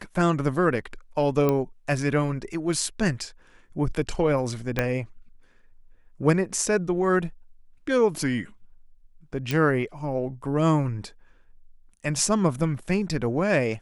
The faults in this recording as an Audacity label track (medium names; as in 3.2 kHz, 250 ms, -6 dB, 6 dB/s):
1.490000	1.490000	pop -11 dBFS
4.790000	4.790000	pop -9 dBFS
9.510000	9.510000	pop